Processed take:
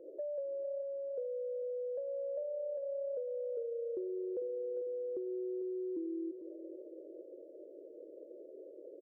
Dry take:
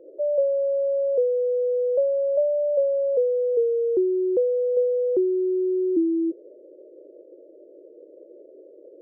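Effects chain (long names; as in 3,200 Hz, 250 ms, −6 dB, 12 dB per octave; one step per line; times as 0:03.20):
downward compressor 4 to 1, threshold −36 dBFS, peak gain reduction 15 dB
on a send: repeating echo 448 ms, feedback 45%, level −11 dB
on the sum: level −4.5 dB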